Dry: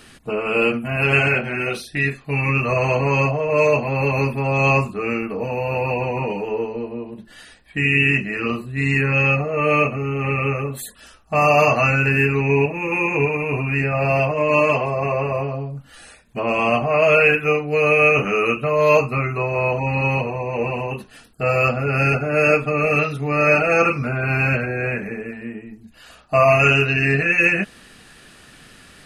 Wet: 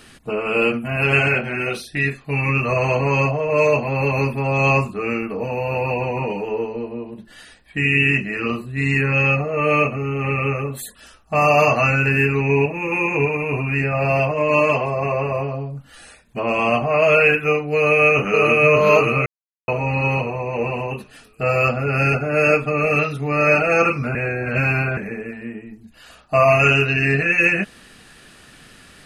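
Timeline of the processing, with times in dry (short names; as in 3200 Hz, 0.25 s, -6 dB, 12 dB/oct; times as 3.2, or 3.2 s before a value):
17.75–18.54 echo throw 0.58 s, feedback 35%, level -1.5 dB
19.26–19.68 mute
24.15–24.97 reverse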